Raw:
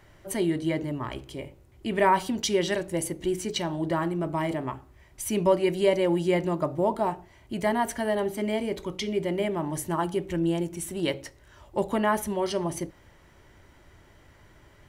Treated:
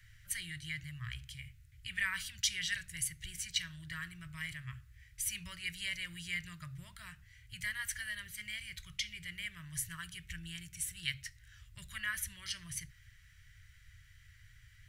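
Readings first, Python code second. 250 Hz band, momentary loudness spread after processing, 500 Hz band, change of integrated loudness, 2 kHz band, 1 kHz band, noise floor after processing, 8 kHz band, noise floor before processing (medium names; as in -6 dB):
-26.0 dB, 14 LU, under -40 dB, -12.0 dB, -3.0 dB, -27.0 dB, -61 dBFS, -2.5 dB, -56 dBFS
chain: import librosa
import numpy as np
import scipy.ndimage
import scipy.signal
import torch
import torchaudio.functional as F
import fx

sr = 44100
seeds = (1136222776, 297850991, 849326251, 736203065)

y = scipy.signal.sosfilt(scipy.signal.ellip(3, 1.0, 40, [120.0, 1700.0], 'bandstop', fs=sr, output='sos'), x)
y = F.gain(torch.from_numpy(y), -2.0).numpy()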